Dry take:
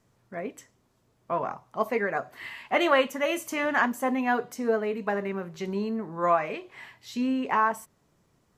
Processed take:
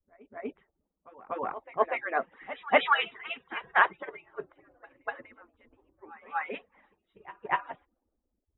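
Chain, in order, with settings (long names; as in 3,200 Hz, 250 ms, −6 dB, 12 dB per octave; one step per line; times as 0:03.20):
harmonic-percussive split with one part muted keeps percussive
low-pass that shuts in the quiet parts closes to 540 Hz, open at −27 dBFS
linear-phase brick-wall low-pass 3,900 Hz
echo ahead of the sound 243 ms −13 dB
multiband upward and downward expander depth 40%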